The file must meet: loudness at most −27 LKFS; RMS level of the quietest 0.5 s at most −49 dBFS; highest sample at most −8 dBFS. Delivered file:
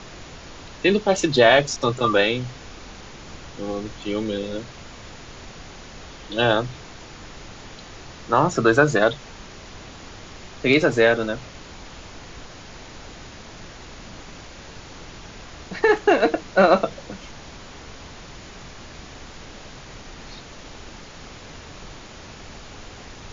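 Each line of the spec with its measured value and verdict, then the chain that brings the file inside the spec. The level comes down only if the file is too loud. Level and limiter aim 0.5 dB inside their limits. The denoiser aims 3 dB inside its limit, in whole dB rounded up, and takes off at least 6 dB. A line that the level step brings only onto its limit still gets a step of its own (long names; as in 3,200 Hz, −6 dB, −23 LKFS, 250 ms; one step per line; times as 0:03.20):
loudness −20.0 LKFS: out of spec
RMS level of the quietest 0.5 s −40 dBFS: out of spec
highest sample −3.5 dBFS: out of spec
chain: broadband denoise 6 dB, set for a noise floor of −40 dBFS
level −7.5 dB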